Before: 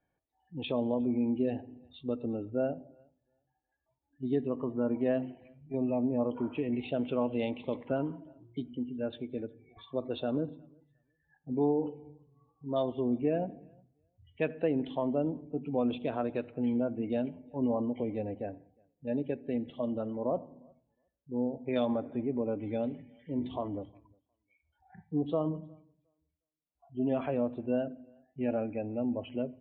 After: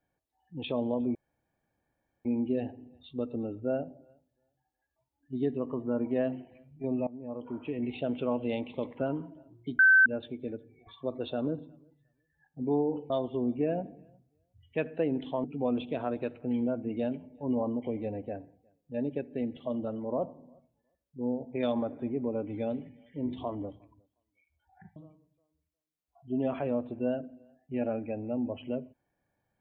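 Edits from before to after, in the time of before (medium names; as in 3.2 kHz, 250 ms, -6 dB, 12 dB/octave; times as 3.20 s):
1.15 s: insert room tone 1.10 s
5.97–6.82 s: fade in, from -19.5 dB
8.69–8.96 s: bleep 1.54 kHz -16 dBFS
12.00–12.74 s: delete
15.08–15.57 s: delete
25.09–25.63 s: delete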